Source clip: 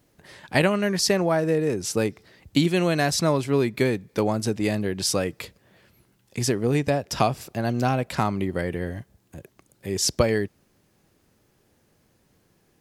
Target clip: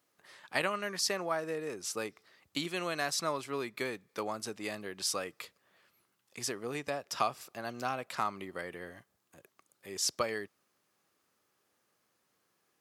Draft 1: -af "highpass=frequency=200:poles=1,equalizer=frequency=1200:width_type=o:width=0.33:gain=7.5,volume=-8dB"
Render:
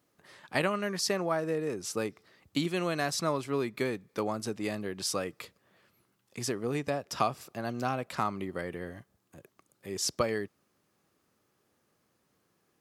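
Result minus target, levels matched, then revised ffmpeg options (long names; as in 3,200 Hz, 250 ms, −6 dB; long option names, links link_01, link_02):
250 Hz band +5.0 dB
-af "highpass=frequency=790:poles=1,equalizer=frequency=1200:width_type=o:width=0.33:gain=7.5,volume=-8dB"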